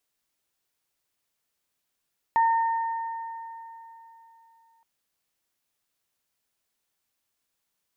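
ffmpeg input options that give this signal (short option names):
-f lavfi -i "aevalsrc='0.141*pow(10,-3*t/3.36)*sin(2*PI*913*t)+0.0299*pow(10,-3*t/3)*sin(2*PI*1826*t)':d=2.47:s=44100"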